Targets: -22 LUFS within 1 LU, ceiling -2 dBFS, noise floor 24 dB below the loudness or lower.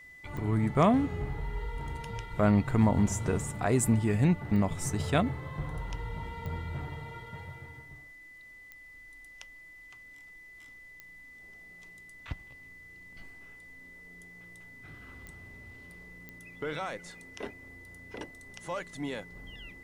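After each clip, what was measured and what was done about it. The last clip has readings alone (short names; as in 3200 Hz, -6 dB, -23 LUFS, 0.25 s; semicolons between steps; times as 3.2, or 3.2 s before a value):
clicks 7; steady tone 2000 Hz; tone level -49 dBFS; loudness -30.5 LUFS; peak -11.0 dBFS; loudness target -22.0 LUFS
-> de-click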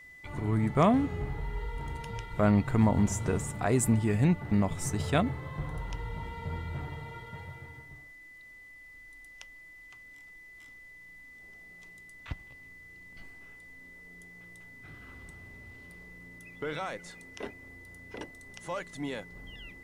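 clicks 0; steady tone 2000 Hz; tone level -49 dBFS
-> notch 2000 Hz, Q 30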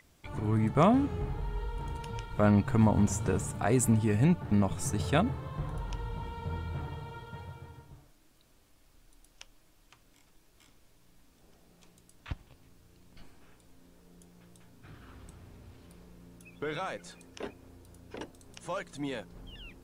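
steady tone none; loudness -30.5 LUFS; peak -11.0 dBFS; loudness target -22.0 LUFS
-> gain +8.5 dB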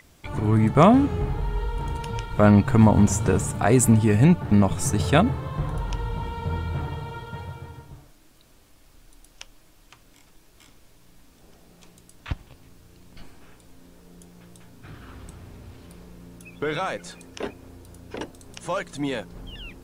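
loudness -22.0 LUFS; peak -2.5 dBFS; noise floor -55 dBFS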